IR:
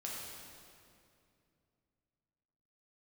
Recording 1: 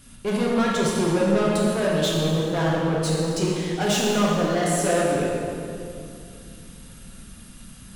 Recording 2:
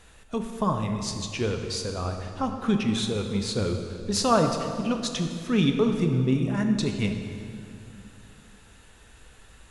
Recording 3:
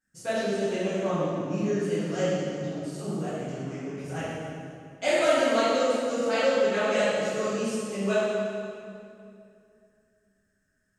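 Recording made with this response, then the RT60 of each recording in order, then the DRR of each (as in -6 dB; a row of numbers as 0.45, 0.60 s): 1; 2.5, 2.5, 2.5 s; -5.0, 4.5, -13.5 dB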